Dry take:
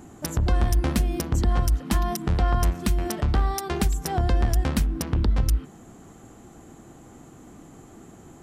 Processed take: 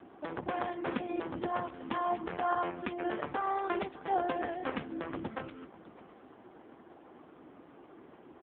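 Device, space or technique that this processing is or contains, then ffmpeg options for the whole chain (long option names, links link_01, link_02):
satellite phone: -af "highpass=340,lowpass=3100,aecho=1:1:607:0.119" -ar 8000 -c:a libopencore_amrnb -b:a 5150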